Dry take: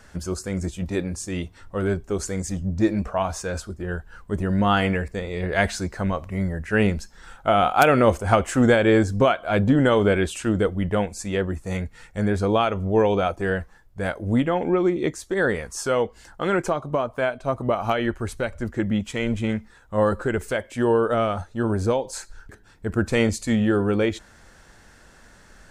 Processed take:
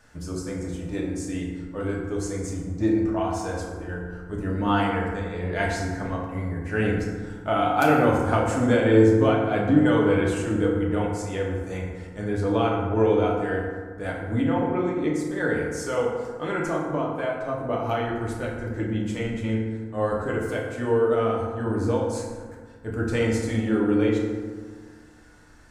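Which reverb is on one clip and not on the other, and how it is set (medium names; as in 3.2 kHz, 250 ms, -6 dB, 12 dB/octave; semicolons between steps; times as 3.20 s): FDN reverb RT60 1.6 s, low-frequency decay 1.25×, high-frequency decay 0.45×, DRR -3.5 dB; trim -8.5 dB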